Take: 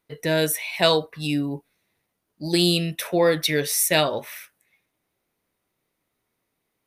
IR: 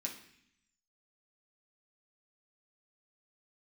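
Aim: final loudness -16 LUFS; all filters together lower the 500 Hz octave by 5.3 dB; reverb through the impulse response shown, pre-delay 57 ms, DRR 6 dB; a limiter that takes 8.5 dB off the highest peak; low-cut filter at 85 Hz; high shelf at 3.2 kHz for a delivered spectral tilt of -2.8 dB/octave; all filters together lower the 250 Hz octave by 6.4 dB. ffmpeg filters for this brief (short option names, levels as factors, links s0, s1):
-filter_complex "[0:a]highpass=85,equalizer=f=250:t=o:g=-8.5,equalizer=f=500:t=o:g=-4.5,highshelf=f=3200:g=3.5,alimiter=limit=0.237:level=0:latency=1,asplit=2[s0][s1];[1:a]atrim=start_sample=2205,adelay=57[s2];[s1][s2]afir=irnorm=-1:irlink=0,volume=0.562[s3];[s0][s3]amix=inputs=2:normalize=0,volume=2.51"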